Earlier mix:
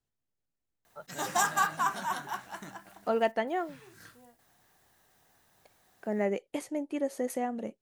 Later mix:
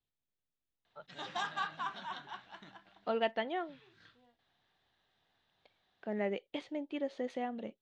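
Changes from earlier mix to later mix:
speech +5.0 dB
master: add transistor ladder low-pass 4,000 Hz, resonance 60%

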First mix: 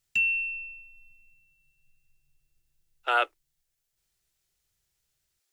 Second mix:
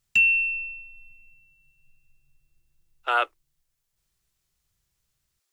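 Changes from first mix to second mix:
background +6.0 dB
master: add parametric band 1,100 Hz +6 dB 0.37 octaves

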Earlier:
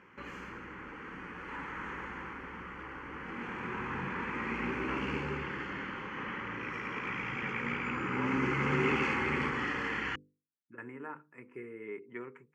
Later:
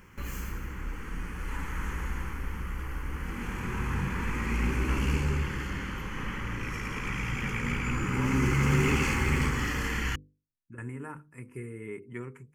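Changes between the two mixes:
background: add low-shelf EQ 130 Hz −10.5 dB
master: remove band-pass filter 330–2,600 Hz

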